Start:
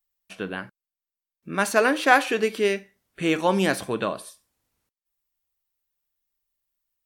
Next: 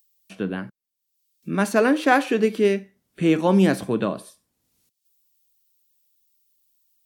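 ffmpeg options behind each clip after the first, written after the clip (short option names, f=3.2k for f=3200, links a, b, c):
-filter_complex "[0:a]equalizer=f=200:t=o:w=2.5:g=11.5,acrossover=split=120|1400|3000[a][b][c][d];[d]acompressor=mode=upward:threshold=-47dB:ratio=2.5[e];[a][b][c][e]amix=inputs=4:normalize=0,volume=-3.5dB"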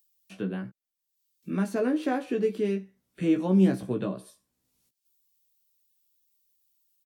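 -filter_complex "[0:a]acrossover=split=490[a][b];[b]acompressor=threshold=-39dB:ratio=2[c];[a][c]amix=inputs=2:normalize=0,asplit=2[d][e];[e]adelay=16,volume=-4dB[f];[d][f]amix=inputs=2:normalize=0,volume=-6dB"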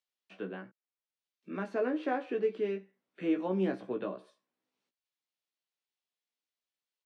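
-af "highpass=360,lowpass=2.8k,volume=-2dB"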